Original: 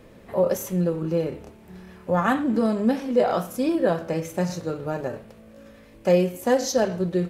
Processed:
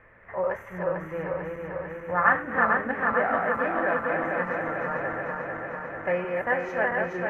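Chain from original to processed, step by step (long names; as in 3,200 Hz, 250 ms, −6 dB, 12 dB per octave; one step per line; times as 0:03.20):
feedback delay that plays each chunk backwards 223 ms, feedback 84%, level −3 dB
drawn EQ curve 110 Hz 0 dB, 200 Hz −10 dB, 310 Hz −8 dB, 1,900 Hz +15 dB, 4,300 Hz −25 dB
level −7 dB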